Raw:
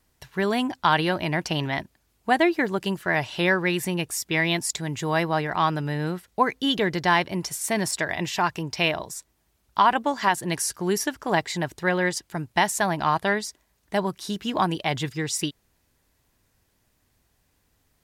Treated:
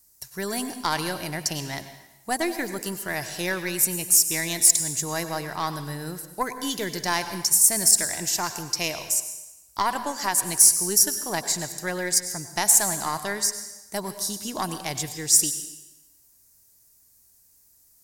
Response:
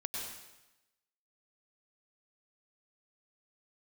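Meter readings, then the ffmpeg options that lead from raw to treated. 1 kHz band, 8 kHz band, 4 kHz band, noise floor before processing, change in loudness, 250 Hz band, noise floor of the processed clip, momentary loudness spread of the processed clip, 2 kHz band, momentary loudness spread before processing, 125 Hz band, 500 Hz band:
-6.0 dB, +13.5 dB, +1.0 dB, -69 dBFS, +2.5 dB, -6.5 dB, -59 dBFS, 16 LU, -6.0 dB, 8 LU, -6.5 dB, -6.0 dB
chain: -filter_complex "[0:a]aeval=exprs='0.473*(cos(1*acos(clip(val(0)/0.473,-1,1)))-cos(1*PI/2))+0.0944*(cos(2*acos(clip(val(0)/0.473,-1,1)))-cos(2*PI/2))':c=same,aexciter=amount=6.9:drive=7.4:freq=4.8k,asplit=2[a][b];[1:a]atrim=start_sample=2205[c];[b][c]afir=irnorm=-1:irlink=0,volume=-6.5dB[d];[a][d]amix=inputs=2:normalize=0,volume=-9dB"

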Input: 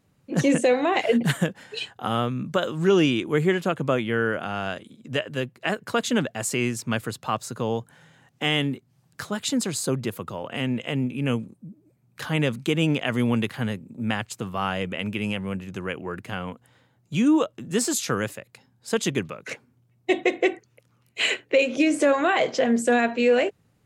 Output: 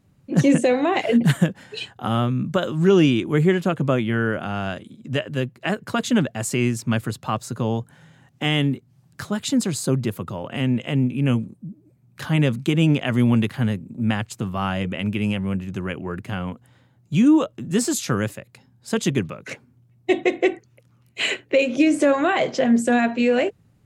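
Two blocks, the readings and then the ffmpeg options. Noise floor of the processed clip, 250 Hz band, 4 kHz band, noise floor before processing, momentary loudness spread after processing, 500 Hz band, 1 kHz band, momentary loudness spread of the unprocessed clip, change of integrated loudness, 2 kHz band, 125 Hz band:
-58 dBFS, +4.5 dB, 0.0 dB, -65 dBFS, 12 LU, +1.0 dB, +1.0 dB, 12 LU, +3.0 dB, 0.0 dB, +7.0 dB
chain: -af "lowshelf=f=290:g=8.5,bandreject=f=470:w=12"

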